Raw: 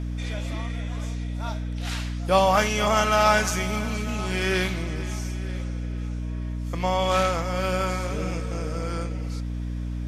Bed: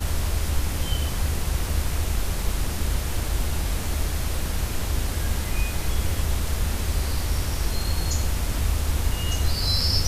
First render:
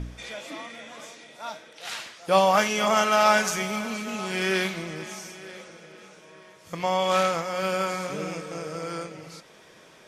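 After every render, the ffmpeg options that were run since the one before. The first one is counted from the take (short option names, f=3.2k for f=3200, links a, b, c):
-af "bandreject=f=60:t=h:w=4,bandreject=f=120:t=h:w=4,bandreject=f=180:t=h:w=4,bandreject=f=240:t=h:w=4,bandreject=f=300:t=h:w=4,bandreject=f=360:t=h:w=4,bandreject=f=420:t=h:w=4"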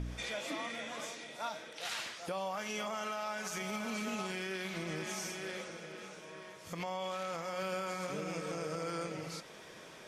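-af "acompressor=threshold=-31dB:ratio=6,alimiter=level_in=5dB:limit=-24dB:level=0:latency=1:release=120,volume=-5dB"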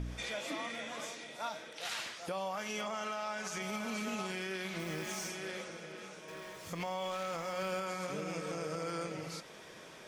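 -filter_complex "[0:a]asettb=1/sr,asplit=3[a][b][c];[a]atrim=end=2.814[d];[b]atrim=start=2.81:end=3.62,asetpts=PTS-STARTPTS,afade=t=in:d=0.004:c=qsin,afade=t=out:st=0.806:d=0.004:c=qsin,lowpass=9.7k[e];[c]atrim=start=3.616[f];[d][e]acrossfade=d=0.004:c1=hsin:c2=qsin[g];[g][f]acrossfade=d=0.004:c1=qsin:c2=hsin,asplit=3[h][i][j];[h]afade=t=out:st=4.78:d=0.02[k];[i]acrusher=bits=9:dc=4:mix=0:aa=0.000001,afade=t=in:st=4.78:d=0.02,afade=t=out:st=5.27:d=0.02[l];[j]afade=t=in:st=5.27:d=0.02[m];[k][l][m]amix=inputs=3:normalize=0,asettb=1/sr,asplit=3[n][o][p];[n]atrim=end=6.284[q];[o]atrim=start=6.28:end=7.8,asetpts=PTS-STARTPTS,afade=t=in:d=0.004:c=qsin,afade=t=out:st=1.516:d=0.004:c=qsin,aeval=exprs='val(0)+0.5*0.00299*sgn(val(0))':c=same[r];[p]atrim=start=7.796[s];[q][r]acrossfade=d=0.004:c1=hsin:c2=qsin[t];[t][s]acrossfade=d=0.004:c1=qsin:c2=hsin"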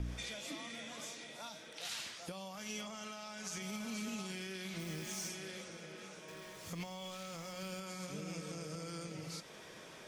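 -filter_complex "[0:a]acrossover=split=270|3000[a][b][c];[b]acompressor=threshold=-52dB:ratio=3[d];[a][d][c]amix=inputs=3:normalize=0"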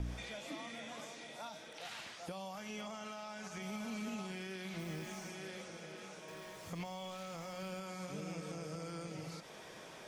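-filter_complex "[0:a]acrossover=split=2800[a][b];[b]acompressor=threshold=-53dB:ratio=4:attack=1:release=60[c];[a][c]amix=inputs=2:normalize=0,equalizer=f=770:w=2:g=4.5"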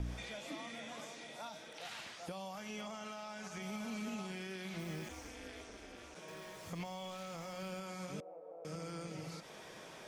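-filter_complex "[0:a]asplit=3[a][b][c];[a]afade=t=out:st=5.08:d=0.02[d];[b]aeval=exprs='val(0)*sin(2*PI*120*n/s)':c=same,afade=t=in:st=5.08:d=0.02,afade=t=out:st=6.14:d=0.02[e];[c]afade=t=in:st=6.14:d=0.02[f];[d][e][f]amix=inputs=3:normalize=0,asettb=1/sr,asplit=3[g][h][i];[g]atrim=end=8.204[j];[h]atrim=start=8.2:end=8.65,asetpts=PTS-STARTPTS,afade=t=in:d=0.004:c=qsin,afade=t=out:st=0.446:d=0.004:c=qsin,asuperpass=centerf=620:order=4:qfactor=1.8[k];[i]atrim=start=8.646[l];[j][k]acrossfade=d=0.004:c1=hsin:c2=qsin[m];[m][l]acrossfade=d=0.004:c1=qsin:c2=hsin"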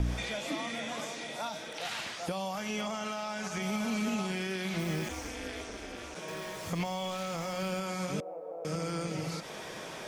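-af "volume=10dB"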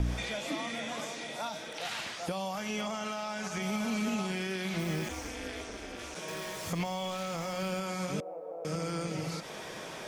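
-filter_complex "[0:a]asettb=1/sr,asplit=3[a][b][c];[a]atrim=end=5.994[d];[b]atrim=start=5.99:end=6.73,asetpts=PTS-STARTPTS,afade=t=in:d=0.004:c=qsin,afade=t=out:st=0.736:d=0.004:c=qsin,equalizer=f=15k:t=o:w=2.4:g=4.5[e];[c]atrim=start=6.726[f];[d][e]acrossfade=d=0.004:c1=hsin:c2=qsin[g];[g][f]acrossfade=d=0.004:c1=qsin:c2=hsin"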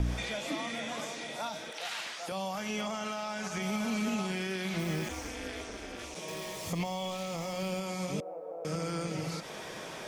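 -filter_complex "[0:a]asettb=1/sr,asplit=3[a][b][c];[a]atrim=end=1.714[d];[b]atrim=start=1.71:end=2.32,asetpts=PTS-STARTPTS,afade=t=in:d=0.004:c=qsin,afade=t=out:st=0.606:d=0.004:c=qsin,highpass=f=560:p=1[e];[c]atrim=start=2.316[f];[d][e]acrossfade=d=0.004:c1=hsin:c2=qsin[g];[g][f]acrossfade=d=0.004:c1=qsin:c2=hsin,asettb=1/sr,asplit=3[h][i][j];[h]atrim=end=6.054[k];[i]atrim=start=6.05:end=8.22,asetpts=PTS-STARTPTS,afade=t=in:d=0.004:c=qsin,afade=t=out:st=2.166:d=0.004:c=qsin,equalizer=f=1.5k:t=o:w=0.4:g=-10.5[l];[j]atrim=start=8.216[m];[k][l]acrossfade=d=0.004:c1=hsin:c2=qsin[n];[n][m]acrossfade=d=0.004:c1=qsin:c2=hsin"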